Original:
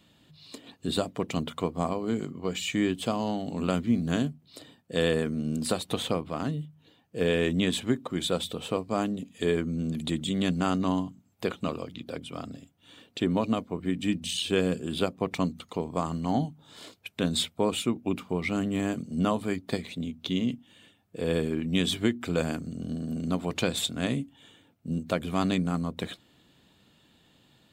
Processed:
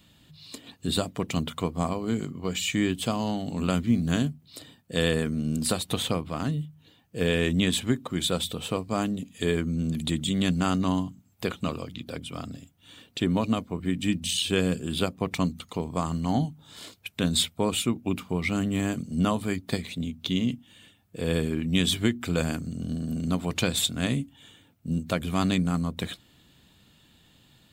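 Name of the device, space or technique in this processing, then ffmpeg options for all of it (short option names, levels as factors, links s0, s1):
smiley-face EQ: -af "lowshelf=f=91:g=7.5,equalizer=f=480:t=o:w=2.3:g=-4.5,highshelf=f=8900:g=6,volume=1.41"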